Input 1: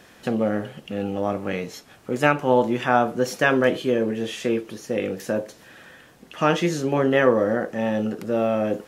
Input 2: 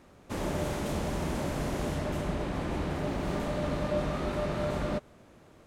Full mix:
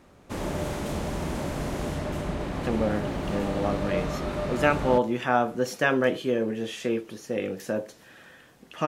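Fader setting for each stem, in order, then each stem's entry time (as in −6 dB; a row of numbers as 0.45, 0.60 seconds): −4.0, +1.5 decibels; 2.40, 0.00 seconds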